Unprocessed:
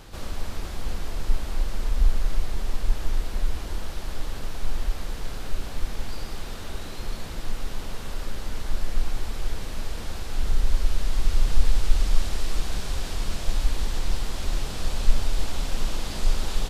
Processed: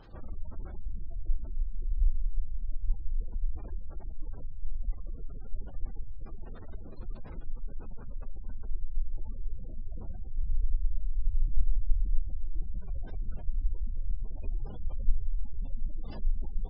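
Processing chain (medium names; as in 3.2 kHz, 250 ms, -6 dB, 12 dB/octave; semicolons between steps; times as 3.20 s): 9.87–10.39 s: octave divider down 2 oct, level -1 dB; dynamic bell 4.2 kHz, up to -5 dB, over -57 dBFS, Q 2.5; spectral gate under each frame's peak -25 dB strong; trim -6.5 dB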